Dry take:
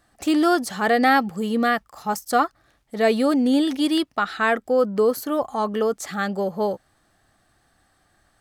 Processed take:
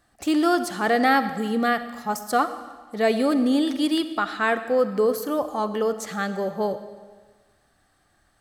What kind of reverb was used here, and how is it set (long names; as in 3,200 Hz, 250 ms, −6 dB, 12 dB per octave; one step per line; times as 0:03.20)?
comb and all-pass reverb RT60 1.4 s, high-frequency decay 0.95×, pre-delay 20 ms, DRR 11 dB
level −2 dB